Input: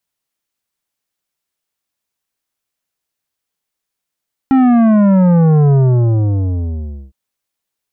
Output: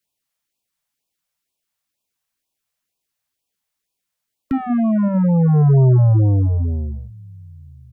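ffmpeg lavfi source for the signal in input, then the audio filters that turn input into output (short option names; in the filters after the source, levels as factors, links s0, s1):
-f lavfi -i "aevalsrc='0.398*clip((2.61-t)/1.4,0,1)*tanh(3.55*sin(2*PI*270*2.61/log(65/270)*(exp(log(65/270)*t/2.61)-1)))/tanh(3.55)':d=2.61:s=44100"
-filter_complex "[0:a]acrossover=split=110[s0][s1];[s0]aecho=1:1:965|1930|2895:0.112|0.046|0.0189[s2];[s1]alimiter=limit=0.266:level=0:latency=1[s3];[s2][s3]amix=inputs=2:normalize=0,afftfilt=real='re*(1-between(b*sr/1024,280*pow(1700/280,0.5+0.5*sin(2*PI*2.1*pts/sr))/1.41,280*pow(1700/280,0.5+0.5*sin(2*PI*2.1*pts/sr))*1.41))':imag='im*(1-between(b*sr/1024,280*pow(1700/280,0.5+0.5*sin(2*PI*2.1*pts/sr))/1.41,280*pow(1700/280,0.5+0.5*sin(2*PI*2.1*pts/sr))*1.41))':win_size=1024:overlap=0.75"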